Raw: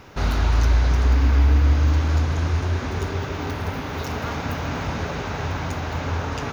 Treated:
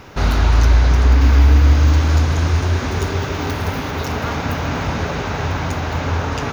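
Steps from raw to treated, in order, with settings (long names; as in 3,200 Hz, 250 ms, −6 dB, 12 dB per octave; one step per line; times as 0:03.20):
0:01.21–0:03.91: high-shelf EQ 4,400 Hz +5 dB
level +5.5 dB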